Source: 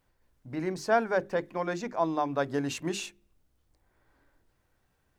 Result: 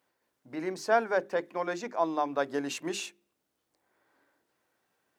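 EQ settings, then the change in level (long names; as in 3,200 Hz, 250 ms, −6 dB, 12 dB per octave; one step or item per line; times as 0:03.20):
high-pass filter 280 Hz 12 dB per octave
0.0 dB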